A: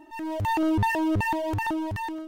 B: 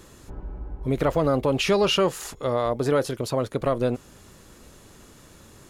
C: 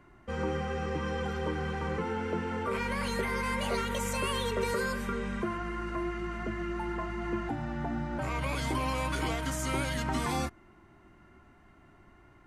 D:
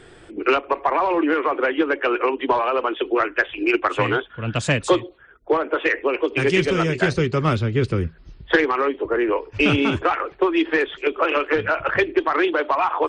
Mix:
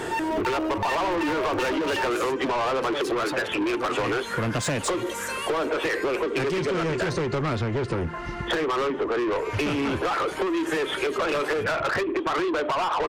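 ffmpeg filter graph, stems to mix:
-filter_complex "[0:a]acompressor=threshold=0.0501:ratio=6,volume=0.501[s0];[1:a]asoftclip=type=tanh:threshold=0.0473,volume=0.251[s1];[2:a]highshelf=f=9600:g=8.5,acompressor=threshold=0.0224:ratio=4,adelay=1150,volume=0.188[s2];[3:a]equalizer=f=3100:t=o:w=2:g=-7,acompressor=threshold=0.0794:ratio=6,lowshelf=f=410:g=8.5,volume=0.562[s3];[s0][s1][s2][s3]amix=inputs=4:normalize=0,asplit=2[s4][s5];[s5]highpass=f=720:p=1,volume=28.2,asoftclip=type=tanh:threshold=0.299[s6];[s4][s6]amix=inputs=2:normalize=0,lowpass=f=5700:p=1,volume=0.501,acompressor=threshold=0.0631:ratio=6"

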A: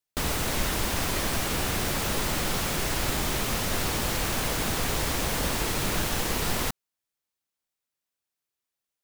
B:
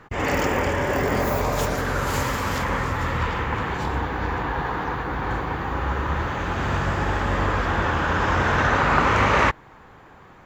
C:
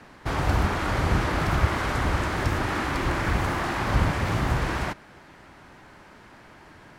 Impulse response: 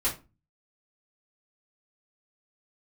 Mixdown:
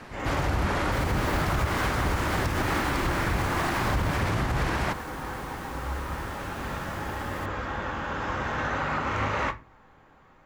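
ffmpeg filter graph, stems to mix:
-filter_complex "[0:a]adelay=750,volume=0.376,afade=t=out:st=4.01:d=0.35:silence=0.298538[s0];[1:a]volume=0.282,asplit=2[s1][s2];[s2]volume=0.224[s3];[2:a]acontrast=27,volume=0.891[s4];[3:a]atrim=start_sample=2205[s5];[s3][s5]afir=irnorm=-1:irlink=0[s6];[s0][s1][s4][s6]amix=inputs=4:normalize=0,alimiter=limit=0.141:level=0:latency=1:release=145"

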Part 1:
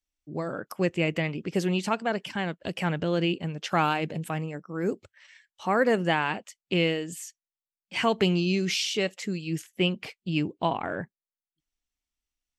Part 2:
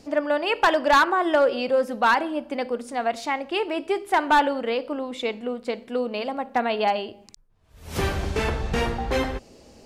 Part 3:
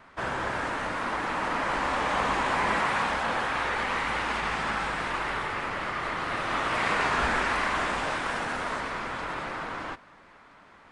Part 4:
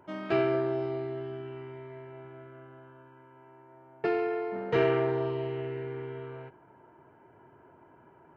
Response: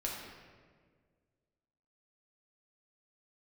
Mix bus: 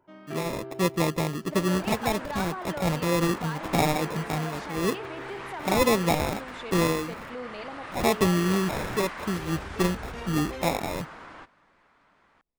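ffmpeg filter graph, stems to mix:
-filter_complex "[0:a]highshelf=f=3300:g=-8,acrusher=samples=29:mix=1:aa=0.000001,volume=1.19[s0];[1:a]adelay=1400,volume=0.316[s1];[2:a]adelay=1500,volume=0.335[s2];[3:a]volume=0.316[s3];[s1][s2][s3]amix=inputs=3:normalize=0,alimiter=level_in=1.68:limit=0.0631:level=0:latency=1:release=33,volume=0.596,volume=1[s4];[s0][s4]amix=inputs=2:normalize=0"

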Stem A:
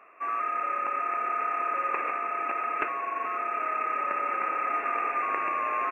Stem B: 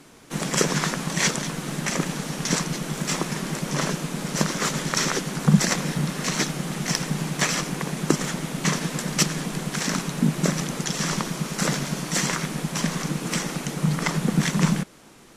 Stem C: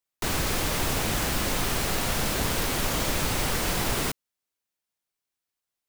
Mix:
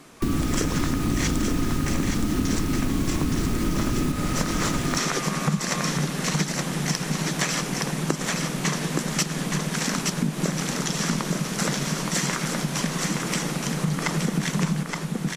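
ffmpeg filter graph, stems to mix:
-filter_complex "[0:a]equalizer=f=1100:t=o:w=0.77:g=-3,volume=0.75[s0];[1:a]volume=1.06,asplit=2[s1][s2];[s2]volume=0.531[s3];[2:a]lowshelf=f=430:t=q:w=3:g=14,volume=0.631,asplit=2[s4][s5];[s5]volume=0.473[s6];[s3][s6]amix=inputs=2:normalize=0,aecho=0:1:870:1[s7];[s0][s1][s4][s7]amix=inputs=4:normalize=0,acompressor=threshold=0.1:ratio=6"

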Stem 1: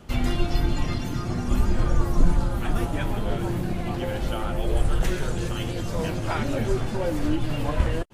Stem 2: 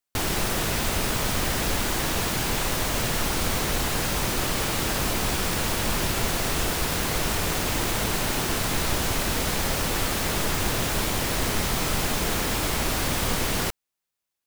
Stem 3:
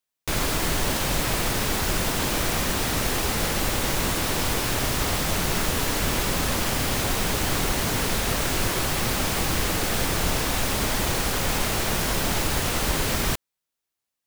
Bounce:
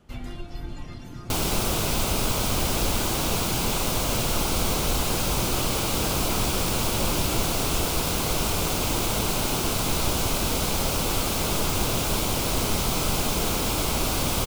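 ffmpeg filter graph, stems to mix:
-filter_complex "[0:a]alimiter=limit=0.211:level=0:latency=1:release=369,volume=0.299[s0];[1:a]equalizer=f=1800:t=o:w=0.34:g=-13.5,adelay=1150,volume=1.12[s1];[s0][s1]amix=inputs=2:normalize=0"

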